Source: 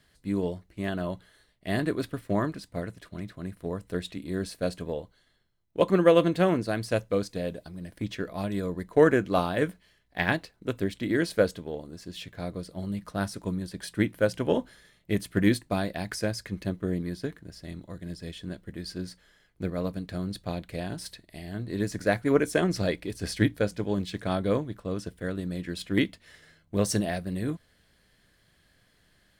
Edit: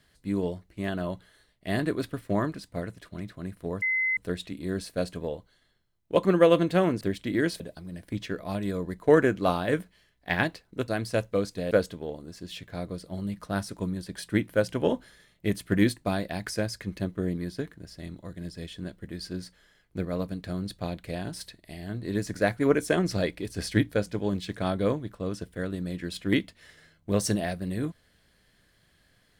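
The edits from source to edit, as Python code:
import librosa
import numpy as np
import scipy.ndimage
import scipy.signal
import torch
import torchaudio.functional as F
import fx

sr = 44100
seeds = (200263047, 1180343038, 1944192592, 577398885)

y = fx.edit(x, sr, fx.insert_tone(at_s=3.82, length_s=0.35, hz=2050.0, db=-23.0),
    fx.swap(start_s=6.66, length_s=0.83, other_s=10.77, other_length_s=0.59), tone=tone)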